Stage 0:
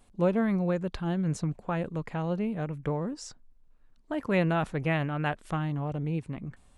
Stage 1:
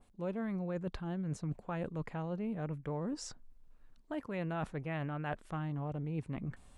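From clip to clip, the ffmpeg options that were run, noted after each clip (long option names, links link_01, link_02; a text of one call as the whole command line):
ffmpeg -i in.wav -af "areverse,acompressor=threshold=-36dB:ratio=6,areverse,adynamicequalizer=threshold=0.00158:dfrequency=2200:dqfactor=0.7:tfrequency=2200:tqfactor=0.7:attack=5:release=100:ratio=0.375:range=2.5:mode=cutabove:tftype=highshelf,volume=1dB" out.wav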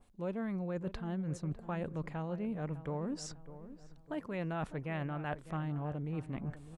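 ffmpeg -i in.wav -filter_complex "[0:a]asplit=2[link_01][link_02];[link_02]adelay=603,lowpass=frequency=1600:poles=1,volume=-13.5dB,asplit=2[link_03][link_04];[link_04]adelay=603,lowpass=frequency=1600:poles=1,volume=0.45,asplit=2[link_05][link_06];[link_06]adelay=603,lowpass=frequency=1600:poles=1,volume=0.45,asplit=2[link_07][link_08];[link_08]adelay=603,lowpass=frequency=1600:poles=1,volume=0.45[link_09];[link_01][link_03][link_05][link_07][link_09]amix=inputs=5:normalize=0" out.wav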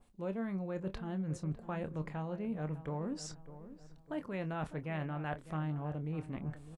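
ffmpeg -i in.wav -filter_complex "[0:a]asplit=2[link_01][link_02];[link_02]adelay=26,volume=-11dB[link_03];[link_01][link_03]amix=inputs=2:normalize=0,volume=-1dB" out.wav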